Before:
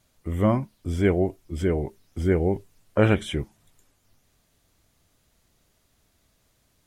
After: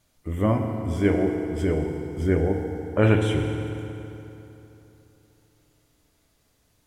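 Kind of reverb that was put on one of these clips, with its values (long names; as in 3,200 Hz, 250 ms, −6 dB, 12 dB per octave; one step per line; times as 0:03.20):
feedback delay network reverb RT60 3.2 s, high-frequency decay 0.75×, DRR 2.5 dB
level −1.5 dB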